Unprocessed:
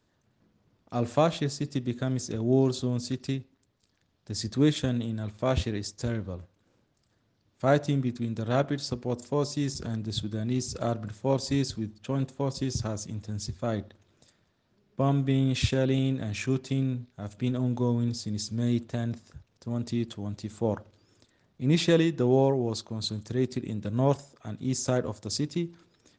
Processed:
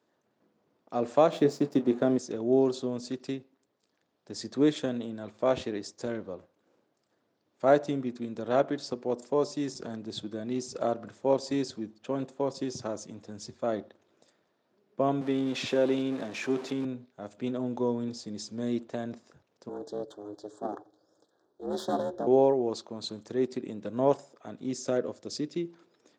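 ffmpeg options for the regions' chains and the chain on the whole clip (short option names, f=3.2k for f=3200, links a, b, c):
-filter_complex "[0:a]asettb=1/sr,asplit=3[a][b][c];[a]atrim=end=1.324[d];[b]atrim=start=1.32:end=2.18,asetpts=PTS-STARTPTS,afade=t=in:d=0.004:c=qsin,afade=t=out:st=0.856:d=0.004:c=qsin,equalizer=f=340:w=0.39:g=8.5,aeval=exprs='sgn(val(0))*max(abs(val(0))-0.00501,0)':c=same,asplit=2[e][f];[f]adelay=28,volume=-12.5dB[g];[e][g]amix=inputs=2:normalize=0,atrim=end_sample=37926[h];[c]atrim=start=2.176[i];[d][h]acrossfade=d=0.004:c1=hsin:c2=qsin[j];[j][i]acrossfade=d=0.004:c1=qsin:c2=hsin,asettb=1/sr,asplit=3[k][l][m];[k]atrim=end=15.214[n];[l]atrim=start=15.21:end=16.85,asetpts=PTS-STARTPTS,afade=t=in:d=0.004:c=qsin,afade=t=out:st=1.636:d=0.004:c=qsin,aeval=exprs='val(0)+0.5*0.0188*sgn(val(0))':c=same,highpass=160,lowpass=7.2k[o];[m]atrim=start=16.846[p];[n][o]acrossfade=d=0.004:c1=hsin:c2=qsin[q];[q][p]acrossfade=d=0.004:c1=qsin:c2=hsin,asettb=1/sr,asplit=3[r][s][t];[r]atrim=end=19.694[u];[s]atrim=start=19.69:end=22.27,asetpts=PTS-STARTPTS,afade=t=in:d=0.004:c=qsin,afade=t=out:st=2.576:d=0.004:c=qsin,aeval=exprs='clip(val(0),-1,0.0188)':c=same,aeval=exprs='val(0)*sin(2*PI*210*n/s)':c=same,asuperstop=centerf=2400:order=8:qfactor=1.4[v];[t]atrim=start=22.266[w];[u][v]acrossfade=d=0.004:c1=hsin:c2=qsin[x];[x][w]acrossfade=d=0.004:c1=qsin:c2=hsin,asettb=1/sr,asplit=3[y][z][aa];[y]atrim=end=24.714[ab];[z]atrim=start=24.71:end=25.65,asetpts=PTS-STARTPTS,afade=t=in:d=0.004:c=qsin,afade=t=out:st=0.936:d=0.004:c=qsin,lowpass=7.6k,equalizer=f=900:w=1.7:g=-8.5[ac];[aa]atrim=start=25.646[ad];[ab][ac]acrossfade=d=0.004:c1=hsin:c2=qsin[ae];[ae][ad]acrossfade=d=0.004:c1=qsin:c2=hsin,highpass=390,tiltshelf=f=1.1k:g=6"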